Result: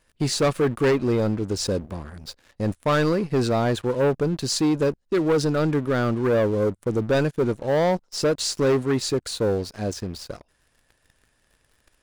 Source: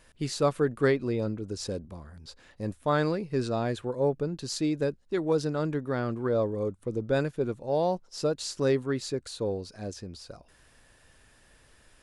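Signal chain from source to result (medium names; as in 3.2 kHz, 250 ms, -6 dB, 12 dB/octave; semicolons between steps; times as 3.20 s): waveshaping leveller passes 3; trim -1.5 dB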